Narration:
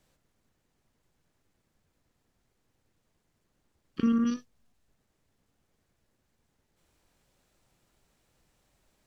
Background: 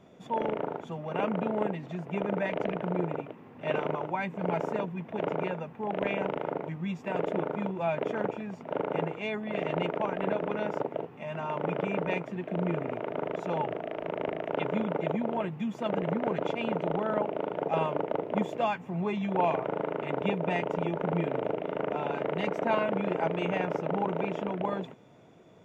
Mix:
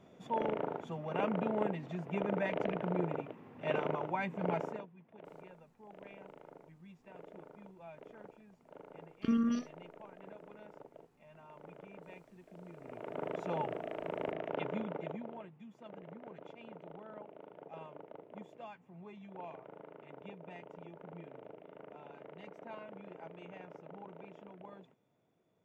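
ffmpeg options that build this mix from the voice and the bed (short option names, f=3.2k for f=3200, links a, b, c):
-filter_complex "[0:a]adelay=5250,volume=-5dB[a];[1:a]volume=12.5dB,afade=t=out:st=4.51:d=0.37:silence=0.125893,afade=t=in:st=12.77:d=0.52:silence=0.149624,afade=t=out:st=14.38:d=1.14:silence=0.177828[b];[a][b]amix=inputs=2:normalize=0"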